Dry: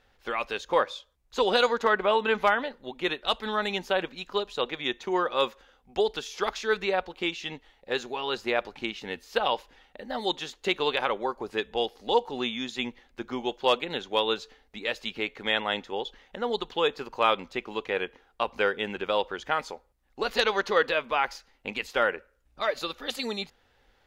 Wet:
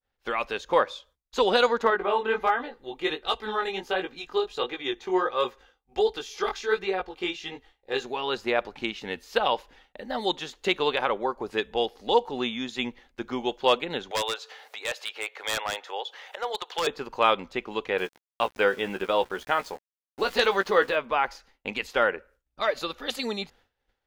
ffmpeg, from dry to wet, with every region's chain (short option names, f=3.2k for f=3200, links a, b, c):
-filter_complex "[0:a]asettb=1/sr,asplit=3[a][b][c];[a]atrim=end=1.904[d];[b]atrim=start=1.9:end=8.05,asetpts=PTS-STARTPTS,afade=t=in:d=0.004:c=qsin,afade=t=out:st=6.146:d=0.004:c=qsin,aecho=1:1:2.5:0.44,atrim=end_sample=271215,flanger=delay=16:depth=6.2:speed=1.4[e];[c]atrim=start=8.046[f];[d][e]acrossfade=d=0.004:c1=hsin:c2=qsin[g];[g][f]acrossfade=d=0.004:c1=qsin:c2=hsin,asettb=1/sr,asplit=3[h][i][j];[h]atrim=end=14.114[k];[i]atrim=start=14.11:end=16.87,asetpts=PTS-STARTPTS,afade=t=in:d=0.004:c=qsin,afade=t=out:st=2.756:d=0.004:c=qsin,highpass=f=540:w=0.5412,highpass=f=540:w=1.3066,acompressor=mode=upward:threshold=-34dB:ratio=2.5:attack=3.2:release=140:knee=2.83:detection=peak,aeval=exprs='0.0841*(abs(mod(val(0)/0.0841+3,4)-2)-1)':c=same[l];[j]atrim=start=16.866[m];[k][l]acrossfade=d=0.004:c1=hsin:c2=qsin[n];[n][m]acrossfade=d=0.004:c1=qsin:c2=hsin,asettb=1/sr,asplit=3[o][p][q];[o]atrim=end=17.984[r];[p]atrim=start=17.98:end=20.96,asetpts=PTS-STARTPTS,afade=t=in:d=0.004:c=qsin,afade=t=out:st=2.976:d=0.004:c=qsin,aeval=exprs='val(0)*gte(abs(val(0)),0.00708)':c=same,asplit=2[s][t];[t]adelay=16,volume=-8.5dB[u];[s][u]amix=inputs=2:normalize=0,atrim=end_sample=131418[v];[q]atrim=start=20.956[w];[r][v]acrossfade=d=0.004:c1=hsin:c2=qsin[x];[x][w]acrossfade=d=0.004:c1=qsin:c2=hsin,agate=range=-33dB:threshold=-52dB:ratio=3:detection=peak,adynamicequalizer=threshold=0.0112:dfrequency=2000:dqfactor=0.7:tfrequency=2000:tqfactor=0.7:attack=5:release=100:ratio=0.375:range=3.5:mode=cutabove:tftype=highshelf,volume=2dB"